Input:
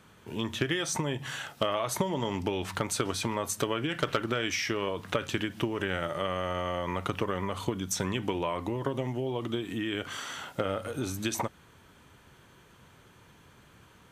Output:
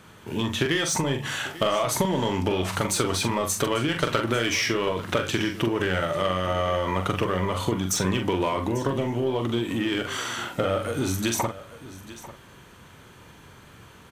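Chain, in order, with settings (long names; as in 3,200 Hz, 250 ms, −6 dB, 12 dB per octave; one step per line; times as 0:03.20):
in parallel at −3.5 dB: gain into a clipping stage and back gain 31.5 dB
on the sum: double-tracking delay 43 ms −6 dB
single-tap delay 844 ms −17 dB
level +2.5 dB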